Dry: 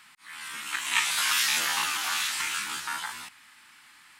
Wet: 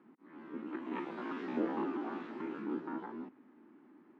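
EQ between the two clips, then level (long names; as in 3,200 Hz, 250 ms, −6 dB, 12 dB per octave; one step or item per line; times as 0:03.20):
flat-topped band-pass 320 Hz, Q 1.7
high-frequency loss of the air 61 metres
+18.0 dB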